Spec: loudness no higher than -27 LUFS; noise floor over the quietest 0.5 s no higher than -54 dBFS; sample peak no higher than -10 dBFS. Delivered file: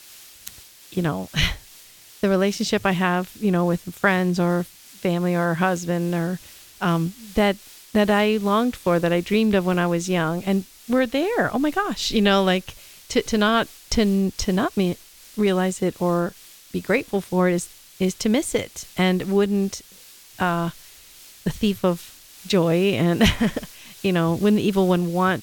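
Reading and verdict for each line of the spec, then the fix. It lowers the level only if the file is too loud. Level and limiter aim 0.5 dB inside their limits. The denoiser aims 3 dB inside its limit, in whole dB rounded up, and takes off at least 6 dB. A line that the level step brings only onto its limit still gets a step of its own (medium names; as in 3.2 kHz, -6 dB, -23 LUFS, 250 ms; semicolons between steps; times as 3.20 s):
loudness -22.0 LUFS: fail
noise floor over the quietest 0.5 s -47 dBFS: fail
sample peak -4.5 dBFS: fail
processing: noise reduction 6 dB, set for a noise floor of -47 dBFS; trim -5.5 dB; peak limiter -10.5 dBFS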